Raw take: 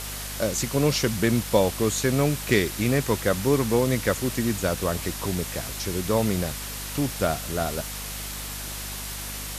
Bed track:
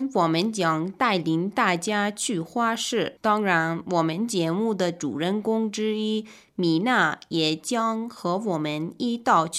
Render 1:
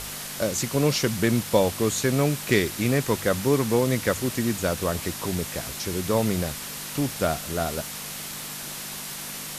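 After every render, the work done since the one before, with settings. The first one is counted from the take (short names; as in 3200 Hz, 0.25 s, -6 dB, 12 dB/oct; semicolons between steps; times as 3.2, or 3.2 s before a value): de-hum 50 Hz, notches 2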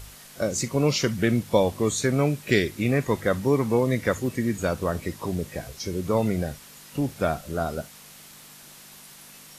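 noise print and reduce 12 dB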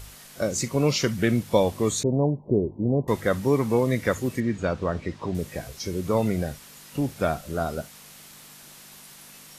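2.03–3.08 steep low-pass 1000 Hz 96 dB/oct; 4.4–5.35 air absorption 130 m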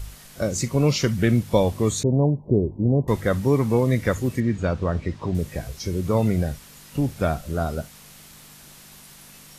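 low shelf 120 Hz +12 dB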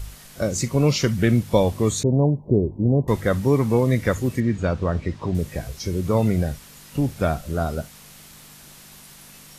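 gain +1 dB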